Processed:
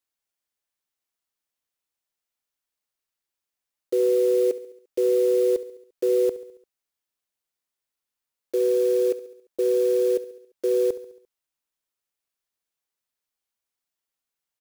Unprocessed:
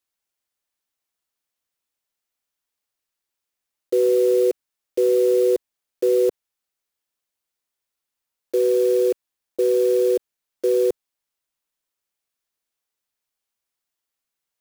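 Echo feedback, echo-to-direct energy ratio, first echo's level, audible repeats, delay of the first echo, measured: 55%, -14.5 dB, -16.0 dB, 4, 69 ms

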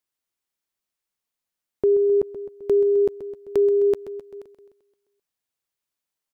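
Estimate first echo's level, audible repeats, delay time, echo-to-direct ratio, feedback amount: -13.0 dB, 5, 0.13 s, -11.0 dB, 59%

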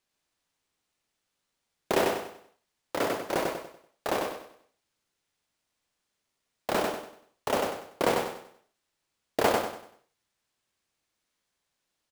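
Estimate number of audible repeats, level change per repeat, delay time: 4, -9.0 dB, 96 ms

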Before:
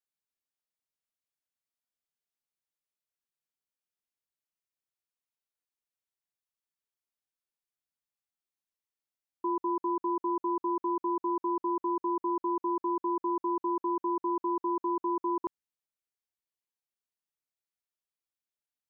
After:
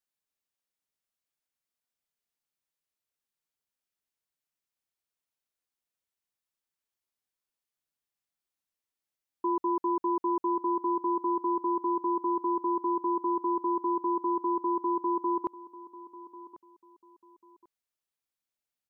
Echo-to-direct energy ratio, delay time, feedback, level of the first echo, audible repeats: -17.5 dB, 1.093 s, 26%, -18.0 dB, 2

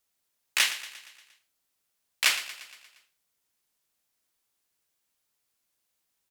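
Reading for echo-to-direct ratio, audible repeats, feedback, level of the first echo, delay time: -13.0 dB, 5, 57%, -14.5 dB, 0.117 s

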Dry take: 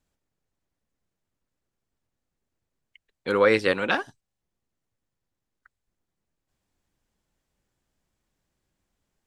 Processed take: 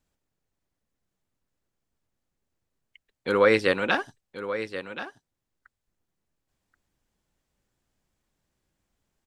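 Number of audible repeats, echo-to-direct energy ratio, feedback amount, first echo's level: 1, -11.5 dB, no steady repeat, -11.5 dB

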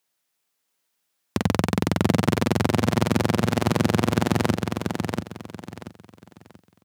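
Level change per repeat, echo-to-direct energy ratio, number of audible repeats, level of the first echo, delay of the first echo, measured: -11.0 dB, -4.5 dB, 3, -5.0 dB, 0.684 s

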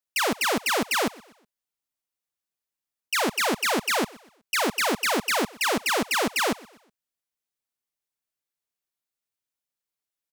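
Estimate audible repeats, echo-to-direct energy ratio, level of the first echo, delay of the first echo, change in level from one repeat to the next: 2, -22.0 dB, -22.5 dB, 0.123 s, -8.0 dB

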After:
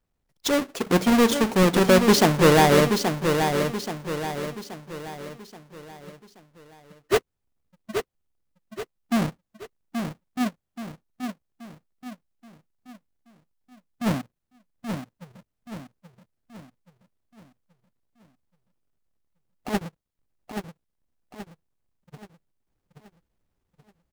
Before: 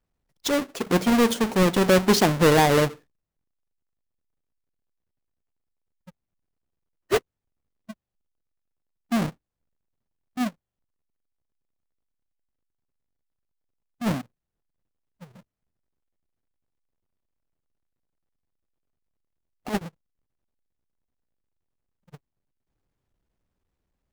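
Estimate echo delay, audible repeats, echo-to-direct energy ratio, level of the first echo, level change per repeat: 0.828 s, 4, -5.5 dB, -6.5 dB, -7.0 dB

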